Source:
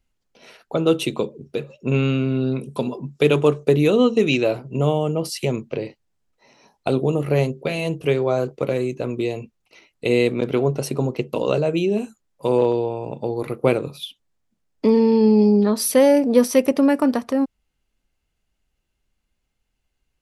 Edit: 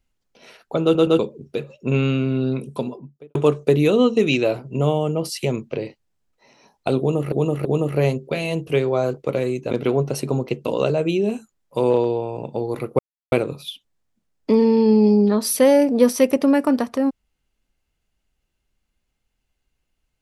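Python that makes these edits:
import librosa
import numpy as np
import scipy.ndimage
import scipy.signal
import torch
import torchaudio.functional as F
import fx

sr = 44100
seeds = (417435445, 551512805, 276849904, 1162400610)

y = fx.studio_fade_out(x, sr, start_s=2.62, length_s=0.73)
y = fx.edit(y, sr, fx.stutter_over(start_s=0.83, slice_s=0.12, count=3),
    fx.repeat(start_s=6.99, length_s=0.33, count=3),
    fx.cut(start_s=9.05, length_s=1.34),
    fx.insert_silence(at_s=13.67, length_s=0.33), tone=tone)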